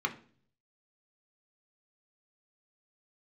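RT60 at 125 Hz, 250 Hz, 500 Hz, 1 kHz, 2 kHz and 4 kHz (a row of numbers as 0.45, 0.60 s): 0.90, 0.65, 0.55, 0.40, 0.40, 0.45 s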